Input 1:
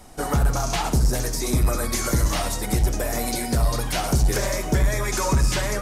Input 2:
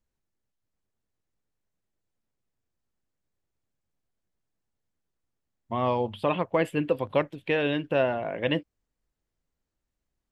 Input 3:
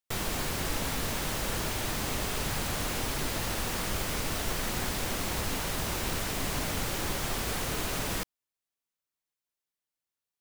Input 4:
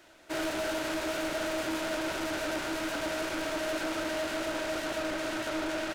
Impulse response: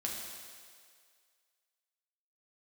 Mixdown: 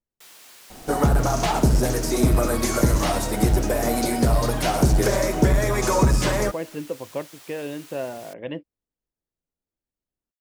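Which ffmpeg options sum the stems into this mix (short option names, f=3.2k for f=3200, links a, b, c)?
-filter_complex "[0:a]adelay=700,volume=-1.5dB[a];[1:a]volume=-12dB,asplit=2[b][c];[2:a]highpass=f=960:p=1,tiltshelf=f=1.5k:g=-7,adelay=100,volume=-17.5dB[d];[3:a]adelay=850,volume=-9dB[e];[c]apad=whole_len=299520[f];[e][f]sidechaincompress=threshold=-47dB:ratio=8:attack=16:release=291[g];[a][b][d][g]amix=inputs=4:normalize=0,equalizer=f=350:w=0.35:g=7.5"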